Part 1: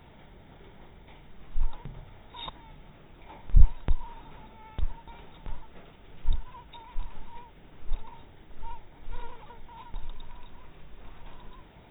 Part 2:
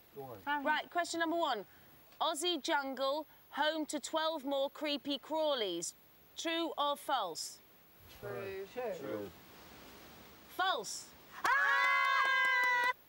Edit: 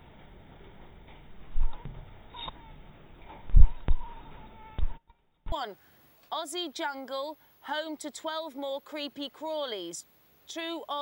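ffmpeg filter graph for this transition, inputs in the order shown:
ffmpeg -i cue0.wav -i cue1.wav -filter_complex "[0:a]asplit=3[link_01][link_02][link_03];[link_01]afade=type=out:start_time=4.82:duration=0.02[link_04];[link_02]agate=range=-23dB:threshold=-41dB:ratio=16:release=100:detection=peak,afade=type=in:start_time=4.82:duration=0.02,afade=type=out:start_time=5.52:duration=0.02[link_05];[link_03]afade=type=in:start_time=5.52:duration=0.02[link_06];[link_04][link_05][link_06]amix=inputs=3:normalize=0,apad=whole_dur=11.01,atrim=end=11.01,atrim=end=5.522[link_07];[1:a]atrim=start=1.408:end=6.9[link_08];[link_07][link_08]acrossfade=duration=0.004:curve1=hsin:curve2=hsin" out.wav

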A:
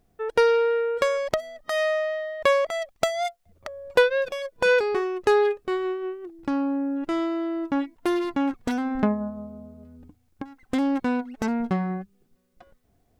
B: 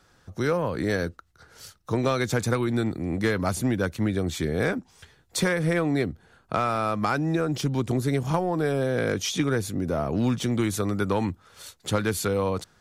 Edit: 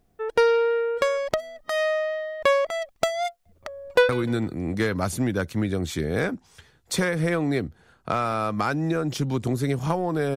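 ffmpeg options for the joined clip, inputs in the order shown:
ffmpeg -i cue0.wav -i cue1.wav -filter_complex "[0:a]apad=whole_dur=10.36,atrim=end=10.36,atrim=end=4.092[link_01];[1:a]atrim=start=2.528:end=8.8[link_02];[link_01][link_02]acrossfade=duration=0.004:curve1=hsin:curve2=hsin,asplit=2[link_03][link_04];[link_04]afade=type=in:start_time=3.83:duration=0.01,afade=type=out:start_time=4.09:duration=0.01,aecho=0:1:150|300|450:0.16788|0.0503641|0.0151092[link_05];[link_03][link_05]amix=inputs=2:normalize=0" out.wav

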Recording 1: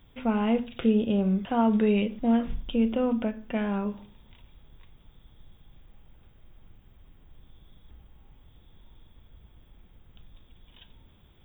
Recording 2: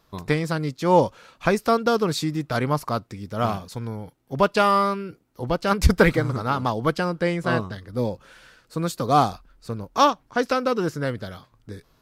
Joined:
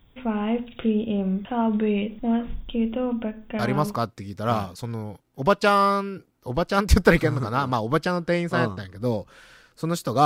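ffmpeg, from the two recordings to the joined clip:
ffmpeg -i cue0.wav -i cue1.wav -filter_complex "[0:a]apad=whole_dur=10.25,atrim=end=10.25,atrim=end=4.01,asetpts=PTS-STARTPTS[link_01];[1:a]atrim=start=2.52:end=9.18,asetpts=PTS-STARTPTS[link_02];[link_01][link_02]acrossfade=duration=0.42:curve1=log:curve2=log" out.wav

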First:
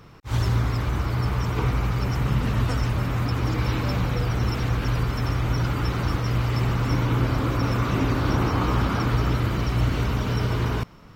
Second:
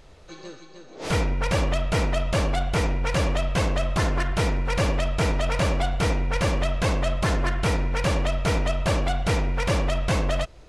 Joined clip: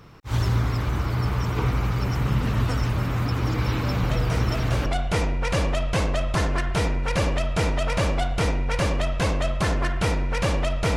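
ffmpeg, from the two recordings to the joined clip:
ffmpeg -i cue0.wav -i cue1.wav -filter_complex "[1:a]asplit=2[link_01][link_02];[0:a]apad=whole_dur=10.96,atrim=end=10.96,atrim=end=4.862[link_03];[link_02]atrim=start=2.478:end=8.58[link_04];[link_01]atrim=start=1.65:end=2.48,asetpts=PTS-STARTPTS,volume=-6.5dB,afade=type=in:duration=0.004:curve=hsin,afade=type=out:start_time=0.826:duration=0.004:curve=hsin,adelay=4030[link_05];[link_03][link_04]acrossfade=duration=0.004:curve1=hsin:curve2=hsin[link_06];[link_06][link_05]amix=inputs=2:normalize=0" out.wav

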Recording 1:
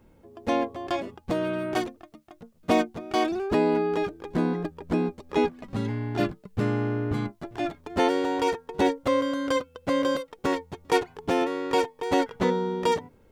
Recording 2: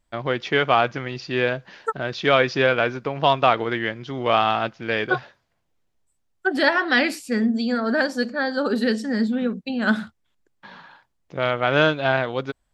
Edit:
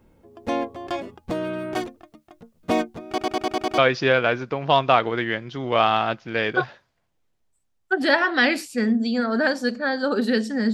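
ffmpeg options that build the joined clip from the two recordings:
ffmpeg -i cue0.wav -i cue1.wav -filter_complex "[0:a]apad=whole_dur=10.73,atrim=end=10.73,asplit=7[link_01][link_02][link_03][link_04][link_05][link_06][link_07];[link_01]atrim=end=3.182[link_08];[link_02]atrim=start=3.078:end=3.182[link_09];[link_03]atrim=start=3.078:end=3.182[link_10];[link_04]atrim=start=3.078:end=3.182[link_11];[link_05]atrim=start=3.078:end=3.182[link_12];[link_06]atrim=start=3.078:end=3.182[link_13];[link_07]atrim=start=3.078:end=3.182[link_14];[1:a]atrim=start=2.318:end=9.27[link_15];[link_08][link_09]acrossfade=duration=0.004:curve1=hsin:curve2=hsin[link_16];[link_16][link_10]acrossfade=duration=0.004:curve1=hsin:curve2=hsin[link_17];[link_17][link_11]acrossfade=duration=0.004:curve1=hsin:curve2=hsin[link_18];[link_18][link_12]acrossfade=duration=0.004:curve1=hsin:curve2=hsin[link_19];[link_19][link_13]acrossfade=duration=0.004:curve1=hsin:curve2=hsin[link_20];[link_20][link_14]acrossfade=duration=0.004:curve1=hsin:curve2=hsin[link_21];[link_21][link_15]acrossfade=duration=0.004:curve1=hsin:curve2=hsin" out.wav

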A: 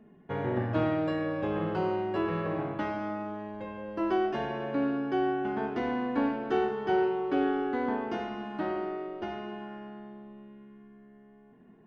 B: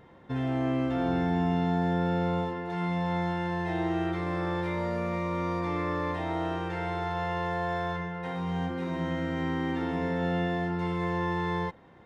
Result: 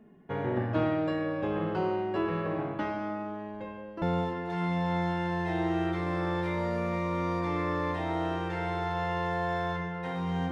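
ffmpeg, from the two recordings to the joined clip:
ffmpeg -i cue0.wav -i cue1.wav -filter_complex "[0:a]asettb=1/sr,asplit=3[link_01][link_02][link_03];[link_01]atrim=end=3.544[link_04];[link_02]atrim=start=3.54:end=4.02,asetpts=PTS-STARTPTS,afade=type=in:duration=0.004:curve=qsin,afade=type=out:start_time=0.476:duration=0.004:curve=qsin,tremolo=f=0.87:d=0.56[link_05];[link_03]atrim=start=4.016[link_06];[link_04][link_05]acrossfade=duration=0.004:curve1=hsin:curve2=qsin[link_07];[link_07][link_06]acrossfade=duration=0.004:curve1=qsin:curve2=hsin,apad=whole_dur=10.51,atrim=end=10.51,atrim=end=4.022[link_08];[1:a]atrim=start=2.218:end=8.71[link_09];[link_08][link_09]acrossfade=duration=0.004:curve1=hsin:curve2=hsin" out.wav

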